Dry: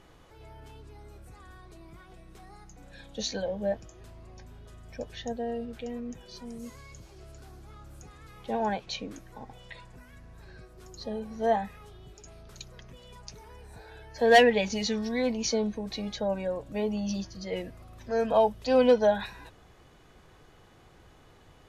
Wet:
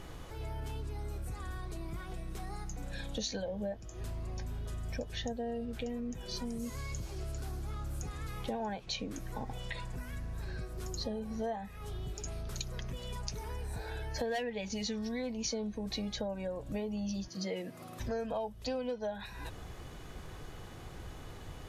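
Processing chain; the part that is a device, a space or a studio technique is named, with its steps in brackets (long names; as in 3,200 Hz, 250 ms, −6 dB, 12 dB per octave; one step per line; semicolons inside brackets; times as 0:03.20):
0:17.28–0:18.00: high-pass filter 160 Hz 24 dB per octave
ASMR close-microphone chain (low-shelf EQ 160 Hz +7 dB; downward compressor 8 to 1, threshold −41 dBFS, peak gain reduction 25.5 dB; high-shelf EQ 6,800 Hz +6 dB)
level +6 dB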